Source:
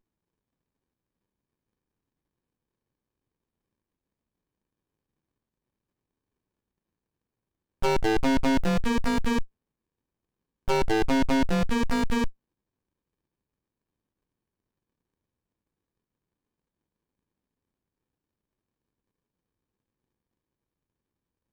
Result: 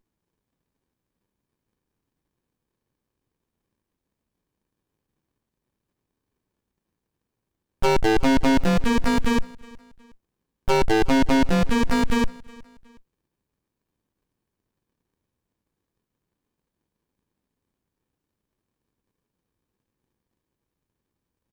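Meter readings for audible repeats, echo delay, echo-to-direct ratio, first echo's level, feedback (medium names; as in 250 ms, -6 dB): 2, 366 ms, -22.5 dB, -23.0 dB, 36%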